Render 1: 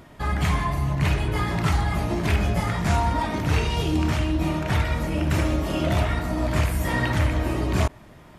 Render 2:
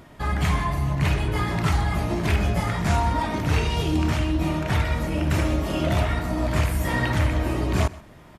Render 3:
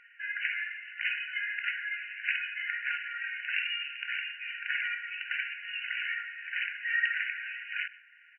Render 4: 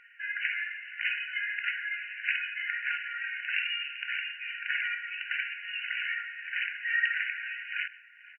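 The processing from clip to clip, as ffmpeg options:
-af "aecho=1:1:128:0.0944"
-af "afftfilt=real='re*between(b*sr/4096,1400,3000)':imag='im*between(b*sr/4096,1400,3000)':win_size=4096:overlap=0.75,volume=1.19"
-filter_complex "[0:a]asplit=2[s0][s1];[s1]adelay=484,volume=0.126,highshelf=f=4000:g=-10.9[s2];[s0][s2]amix=inputs=2:normalize=0,volume=1.12"

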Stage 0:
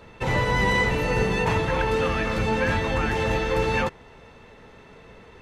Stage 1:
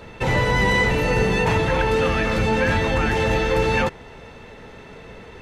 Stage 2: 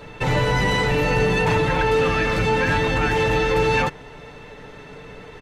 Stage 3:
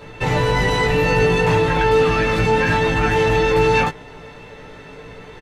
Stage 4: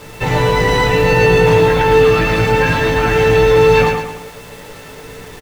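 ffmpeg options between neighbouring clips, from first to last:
-filter_complex "[0:a]equalizer=f=1100:t=o:w=0.33:g=-3.5,asplit=2[s0][s1];[s1]alimiter=limit=0.075:level=0:latency=1,volume=1.26[s2];[s0][s2]amix=inputs=2:normalize=0"
-af "aecho=1:1:6.8:0.47,asoftclip=type=tanh:threshold=0.316"
-filter_complex "[0:a]asplit=2[s0][s1];[s1]adelay=18,volume=0.708[s2];[s0][s2]amix=inputs=2:normalize=0"
-af "acrusher=bits=6:mix=0:aa=0.000001,aecho=1:1:111|222|333|444|555:0.562|0.242|0.104|0.0447|0.0192,volume=1.33"

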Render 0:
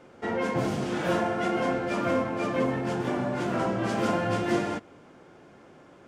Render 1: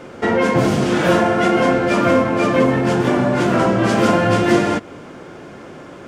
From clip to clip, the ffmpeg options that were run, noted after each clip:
-filter_complex "[0:a]equalizer=f=800:w=4.1:g=-3,asplit=2[s0][s1];[s1]acompressor=threshold=0.02:ratio=6,volume=1.26[s2];[s0][s2]amix=inputs=2:normalize=0,volume=2.82"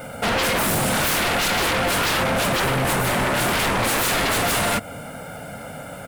-af "aecho=1:1:1.4:0.96,aexciter=amount=12.5:drive=3.1:freq=8800,aeval=exprs='0.158*(abs(mod(val(0)/0.158+3,4)-2)-1)':c=same"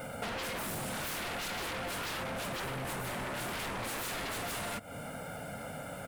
-af "acompressor=threshold=0.0316:ratio=6,volume=0.473"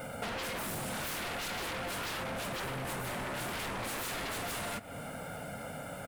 -filter_complex "[0:a]asplit=2[s0][s1];[s1]adelay=699.7,volume=0.141,highshelf=f=4000:g=-15.7[s2];[s0][s2]amix=inputs=2:normalize=0"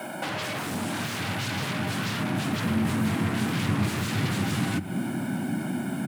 -filter_complex "[0:a]asubboost=boost=8:cutoff=170,afreqshift=90,acrossover=split=8200[s0][s1];[s1]acompressor=threshold=0.00251:ratio=4:attack=1:release=60[s2];[s0][s2]amix=inputs=2:normalize=0,volume=2"

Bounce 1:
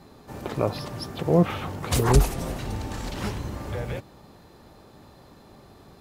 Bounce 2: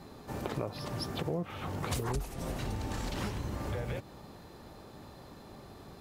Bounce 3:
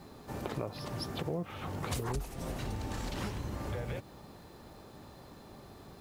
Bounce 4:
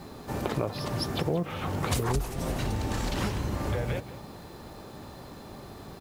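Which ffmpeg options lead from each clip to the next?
-af "acompressor=threshold=0.0251:ratio=6"
-af "acrusher=bits=10:mix=0:aa=0.000001,volume=0.841"
-af "aecho=1:1:182:0.158,volume=2.37"

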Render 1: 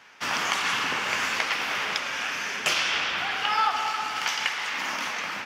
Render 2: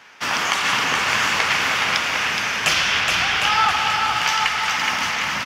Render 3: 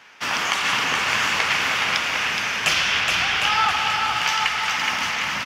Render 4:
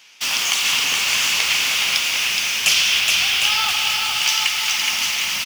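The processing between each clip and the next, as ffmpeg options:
-filter_complex "[0:a]asubboost=boost=6:cutoff=140,asplit=2[s0][s1];[s1]aecho=0:1:420|756|1025|1240|1412:0.631|0.398|0.251|0.158|0.1[s2];[s0][s2]amix=inputs=2:normalize=0,volume=1.88"
-af "equalizer=f=2700:t=o:w=0.77:g=2,volume=0.75"
-filter_complex "[0:a]asplit=2[s0][s1];[s1]acrusher=bits=4:mix=0:aa=0.000001,volume=0.398[s2];[s0][s2]amix=inputs=2:normalize=0,aexciter=amount=3.7:drive=8.1:freq=2400,volume=0.355"

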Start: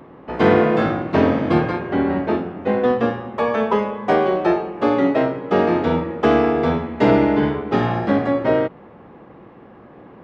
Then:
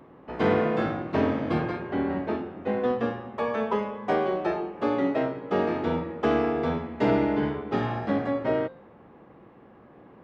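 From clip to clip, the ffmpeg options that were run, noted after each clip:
-af "bandreject=f=174.9:t=h:w=4,bandreject=f=349.8:t=h:w=4,bandreject=f=524.7:t=h:w=4,bandreject=f=699.6:t=h:w=4,bandreject=f=874.5:t=h:w=4,bandreject=f=1049.4:t=h:w=4,bandreject=f=1224.3:t=h:w=4,bandreject=f=1399.2:t=h:w=4,bandreject=f=1574.1:t=h:w=4,bandreject=f=1749:t=h:w=4,bandreject=f=1923.9:t=h:w=4,bandreject=f=2098.8:t=h:w=4,bandreject=f=2273.7:t=h:w=4,bandreject=f=2448.6:t=h:w=4,bandreject=f=2623.5:t=h:w=4,bandreject=f=2798.4:t=h:w=4,bandreject=f=2973.3:t=h:w=4,bandreject=f=3148.2:t=h:w=4,bandreject=f=3323.1:t=h:w=4,bandreject=f=3498:t=h:w=4,bandreject=f=3672.9:t=h:w=4,bandreject=f=3847.8:t=h:w=4,bandreject=f=4022.7:t=h:w=4,bandreject=f=4197.6:t=h:w=4,bandreject=f=4372.5:t=h:w=4,bandreject=f=4547.4:t=h:w=4,bandreject=f=4722.3:t=h:w=4,bandreject=f=4897.2:t=h:w=4,bandreject=f=5072.1:t=h:w=4,bandreject=f=5247:t=h:w=4,bandreject=f=5421.9:t=h:w=4,bandreject=f=5596.8:t=h:w=4,bandreject=f=5771.7:t=h:w=4,bandreject=f=5946.6:t=h:w=4,bandreject=f=6121.5:t=h:w=4,bandreject=f=6296.4:t=h:w=4,bandreject=f=6471.3:t=h:w=4,bandreject=f=6646.2:t=h:w=4,volume=0.398"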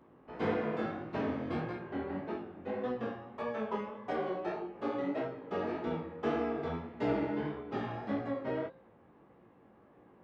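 -af "flanger=delay=16.5:depth=6.8:speed=1.7,volume=0.473"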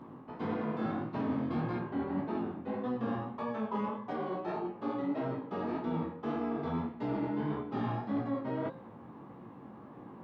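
-af "areverse,acompressor=threshold=0.00708:ratio=6,areverse,equalizer=f=125:t=o:w=1:g=10,equalizer=f=250:t=o:w=1:g=10,equalizer=f=1000:t=o:w=1:g=10,equalizer=f=4000:t=o:w=1:g=6,volume=1.33"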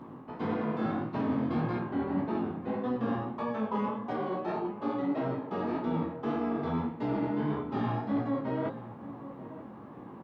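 -filter_complex "[0:a]asplit=2[s0][s1];[s1]adelay=932.9,volume=0.2,highshelf=f=4000:g=-21[s2];[s0][s2]amix=inputs=2:normalize=0,volume=1.41"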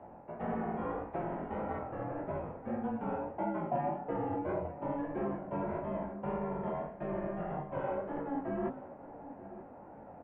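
-af "equalizer=f=250:t=o:w=1:g=-11,equalizer=f=500:t=o:w=1:g=9,equalizer=f=1000:t=o:w=1:g=8,equalizer=f=2000:t=o:w=1:g=4,highpass=f=360:t=q:w=0.5412,highpass=f=360:t=q:w=1.307,lowpass=f=2900:t=q:w=0.5176,lowpass=f=2900:t=q:w=0.7071,lowpass=f=2900:t=q:w=1.932,afreqshift=-270,volume=0.422"

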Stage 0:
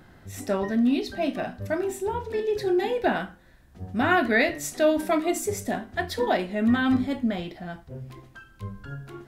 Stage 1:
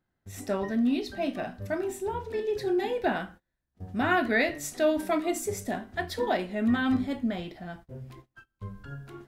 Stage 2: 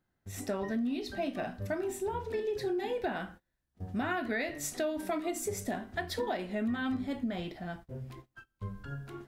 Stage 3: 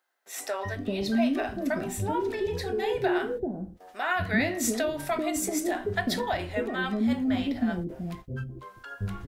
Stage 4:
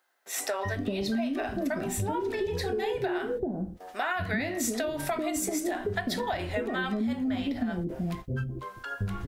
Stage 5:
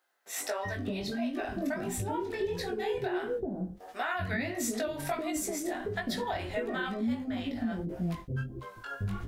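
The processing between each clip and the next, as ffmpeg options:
-af "agate=range=0.0562:threshold=0.00631:ratio=16:detection=peak,volume=0.668"
-af "acompressor=threshold=0.0316:ratio=6"
-filter_complex "[0:a]acrossover=split=500[s0][s1];[s0]adelay=390[s2];[s2][s1]amix=inputs=2:normalize=0,volume=2.37"
-af "acompressor=threshold=0.0251:ratio=6,volume=1.78"
-af "flanger=delay=16.5:depth=5.5:speed=1.5"

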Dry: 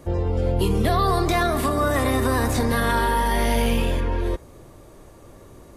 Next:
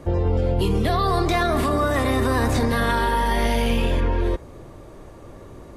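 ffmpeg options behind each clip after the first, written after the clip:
-filter_complex "[0:a]lowpass=f=3400:p=1,acrossover=split=2500[s0][s1];[s0]alimiter=limit=0.133:level=0:latency=1[s2];[s2][s1]amix=inputs=2:normalize=0,volume=1.68"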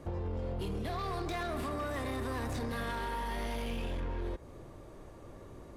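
-af "acompressor=threshold=0.0708:ratio=6,volume=15,asoftclip=hard,volume=0.0668,volume=0.376"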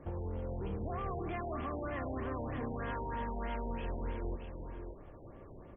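-af "aecho=1:1:574:0.473,afftfilt=real='re*lt(b*sr/1024,940*pow(3500/940,0.5+0.5*sin(2*PI*3.2*pts/sr)))':imag='im*lt(b*sr/1024,940*pow(3500/940,0.5+0.5*sin(2*PI*3.2*pts/sr)))':win_size=1024:overlap=0.75,volume=0.75"

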